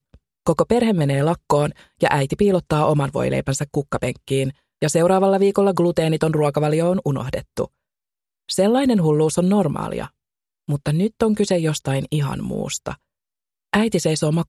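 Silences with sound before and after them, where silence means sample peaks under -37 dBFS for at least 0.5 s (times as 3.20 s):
7.66–8.49 s
10.07–10.68 s
12.95–13.73 s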